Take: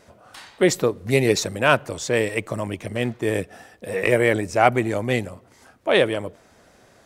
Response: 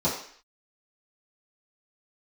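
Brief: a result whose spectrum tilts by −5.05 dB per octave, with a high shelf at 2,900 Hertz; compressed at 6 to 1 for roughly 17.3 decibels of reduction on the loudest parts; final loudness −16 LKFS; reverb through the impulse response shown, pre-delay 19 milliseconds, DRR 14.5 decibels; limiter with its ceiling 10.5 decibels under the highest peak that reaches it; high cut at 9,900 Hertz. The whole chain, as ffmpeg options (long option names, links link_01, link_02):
-filter_complex "[0:a]lowpass=9900,highshelf=frequency=2900:gain=-4.5,acompressor=threshold=-31dB:ratio=6,alimiter=level_in=4.5dB:limit=-24dB:level=0:latency=1,volume=-4.5dB,asplit=2[link_01][link_02];[1:a]atrim=start_sample=2205,adelay=19[link_03];[link_02][link_03]afir=irnorm=-1:irlink=0,volume=-26.5dB[link_04];[link_01][link_04]amix=inputs=2:normalize=0,volume=24dB"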